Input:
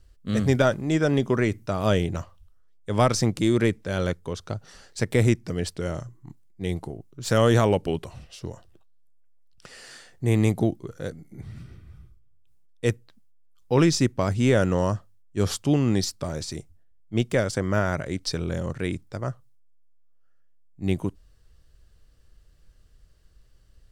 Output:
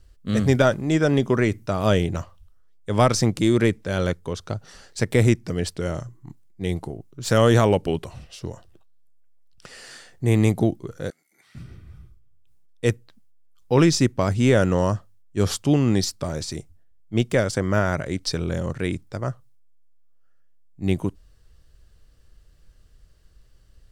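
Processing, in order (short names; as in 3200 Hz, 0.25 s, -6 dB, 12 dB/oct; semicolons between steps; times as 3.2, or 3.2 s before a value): 11.1–11.55 HPF 1400 Hz 12 dB/oct; gain +2.5 dB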